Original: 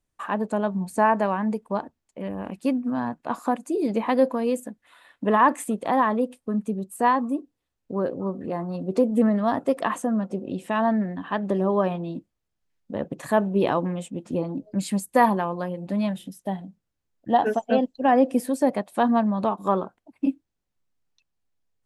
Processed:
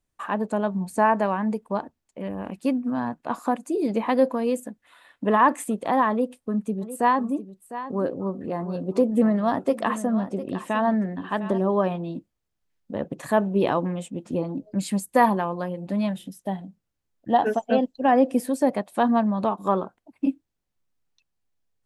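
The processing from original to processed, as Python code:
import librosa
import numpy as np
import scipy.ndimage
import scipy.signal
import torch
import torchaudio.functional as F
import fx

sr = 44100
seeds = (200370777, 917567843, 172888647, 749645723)

y = fx.echo_single(x, sr, ms=704, db=-13.0, at=(6.81, 11.57), fade=0.02)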